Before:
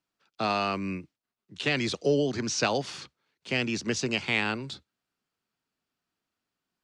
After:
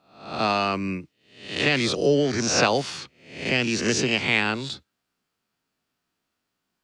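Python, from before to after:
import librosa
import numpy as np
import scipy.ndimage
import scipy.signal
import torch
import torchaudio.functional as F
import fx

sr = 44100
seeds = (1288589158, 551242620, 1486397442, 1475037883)

y = fx.spec_swells(x, sr, rise_s=0.56)
y = y * librosa.db_to_amplitude(4.0)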